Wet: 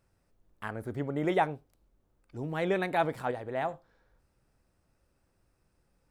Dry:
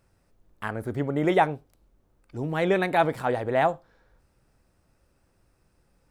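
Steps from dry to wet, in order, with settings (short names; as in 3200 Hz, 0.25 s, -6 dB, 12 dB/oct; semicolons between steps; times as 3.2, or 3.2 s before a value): 3.31–3.73 resonator 64 Hz, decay 1.5 s, harmonics all, mix 40%; gain -6 dB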